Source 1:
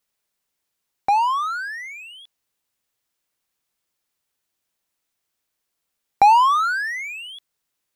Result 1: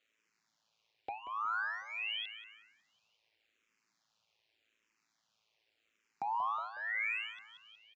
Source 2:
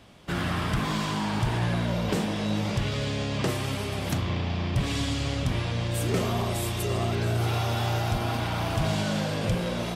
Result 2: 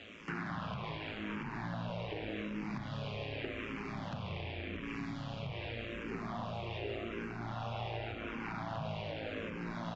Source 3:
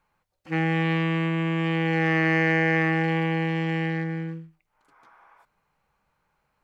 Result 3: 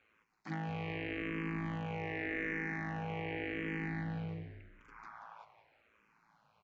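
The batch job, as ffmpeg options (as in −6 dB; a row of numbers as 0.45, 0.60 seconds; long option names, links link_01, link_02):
-filter_complex "[0:a]aemphasis=mode=production:type=50fm,bandreject=frequency=60:width_type=h:width=6,bandreject=frequency=120:width_type=h:width=6,bandreject=frequency=180:width_type=h:width=6,bandreject=frequency=240:width_type=h:width=6,bandreject=frequency=300:width_type=h:width=6,bandreject=frequency=360:width_type=h:width=6,acrossover=split=2800[link_01][link_02];[link_02]acompressor=threshold=-46dB:ratio=4:attack=1:release=60[link_03];[link_01][link_03]amix=inputs=2:normalize=0,equalizer=frequency=2500:width=3:gain=5.5,acompressor=threshold=-37dB:ratio=8,tremolo=f=110:d=0.788,aresample=16000,asoftclip=type=tanh:threshold=-34dB,aresample=44100,highpass=110,lowpass=3800,asplit=6[link_04][link_05][link_06][link_07][link_08][link_09];[link_05]adelay=183,afreqshift=-65,volume=-11dB[link_10];[link_06]adelay=366,afreqshift=-130,volume=-17.7dB[link_11];[link_07]adelay=549,afreqshift=-195,volume=-24.5dB[link_12];[link_08]adelay=732,afreqshift=-260,volume=-31.2dB[link_13];[link_09]adelay=915,afreqshift=-325,volume=-38dB[link_14];[link_04][link_10][link_11][link_12][link_13][link_14]amix=inputs=6:normalize=0,asplit=2[link_15][link_16];[link_16]afreqshift=-0.86[link_17];[link_15][link_17]amix=inputs=2:normalize=1,volume=8dB"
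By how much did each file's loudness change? −18.0, −13.0, −15.0 LU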